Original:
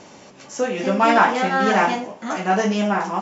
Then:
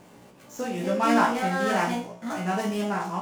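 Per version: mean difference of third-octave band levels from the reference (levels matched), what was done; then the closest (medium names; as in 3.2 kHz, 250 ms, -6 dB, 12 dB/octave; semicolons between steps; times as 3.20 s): 5.5 dB: median filter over 9 samples; tone controls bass +6 dB, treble +7 dB; feedback comb 59 Hz, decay 0.34 s, harmonics all, mix 90%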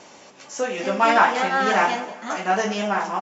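2.5 dB: bass shelf 280 Hz -11.5 dB; vibrato 7.1 Hz 22 cents; feedback delay 188 ms, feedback 35%, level -16.5 dB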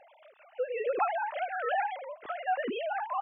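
14.0 dB: formants replaced by sine waves; compression 2.5:1, threshold -22 dBFS, peak gain reduction 8 dB; random flutter of the level, depth 60%; trim -4 dB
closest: second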